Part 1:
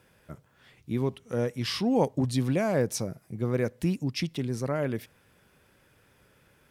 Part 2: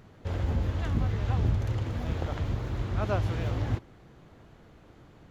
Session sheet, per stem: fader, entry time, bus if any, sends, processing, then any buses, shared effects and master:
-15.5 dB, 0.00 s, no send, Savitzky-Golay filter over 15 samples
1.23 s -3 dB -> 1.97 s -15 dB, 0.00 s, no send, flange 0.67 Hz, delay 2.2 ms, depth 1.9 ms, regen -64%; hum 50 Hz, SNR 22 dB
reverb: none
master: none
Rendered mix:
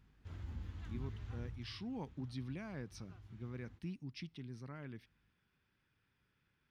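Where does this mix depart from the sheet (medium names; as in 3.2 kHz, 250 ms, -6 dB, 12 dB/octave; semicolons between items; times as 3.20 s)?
stem 2 -3.0 dB -> -13.0 dB; master: extra peaking EQ 560 Hz -13 dB 1 oct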